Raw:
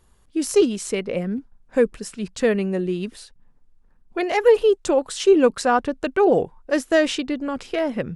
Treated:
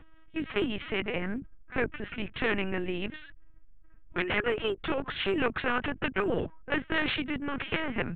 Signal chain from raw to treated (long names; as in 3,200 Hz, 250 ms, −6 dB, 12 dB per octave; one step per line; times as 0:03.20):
phaser with its sweep stopped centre 1,800 Hz, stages 4
linear-prediction vocoder at 8 kHz pitch kept
every bin compressed towards the loudest bin 2 to 1
level −2.5 dB